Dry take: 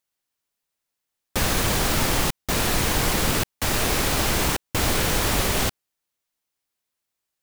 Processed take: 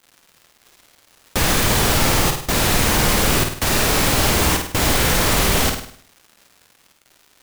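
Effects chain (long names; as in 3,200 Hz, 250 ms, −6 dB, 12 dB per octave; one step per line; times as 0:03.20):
in parallel at +2 dB: brickwall limiter −19.5 dBFS, peak gain reduction 10 dB
on the sum: surface crackle 280 per second −37 dBFS
flutter between parallel walls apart 8.8 metres, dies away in 0.56 s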